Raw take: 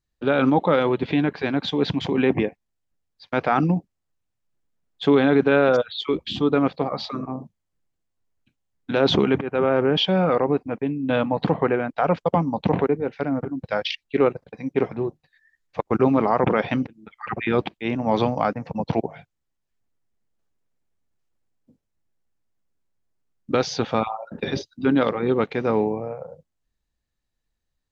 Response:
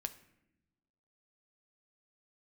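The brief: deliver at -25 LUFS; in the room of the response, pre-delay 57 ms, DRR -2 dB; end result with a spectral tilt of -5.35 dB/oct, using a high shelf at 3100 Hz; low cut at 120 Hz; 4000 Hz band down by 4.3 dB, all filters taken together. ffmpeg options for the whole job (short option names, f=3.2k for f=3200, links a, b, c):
-filter_complex "[0:a]highpass=120,highshelf=f=3.1k:g=3.5,equalizer=f=4k:t=o:g=-8,asplit=2[a][b];[1:a]atrim=start_sample=2205,adelay=57[c];[b][c]afir=irnorm=-1:irlink=0,volume=3.5dB[d];[a][d]amix=inputs=2:normalize=0,volume=-6dB"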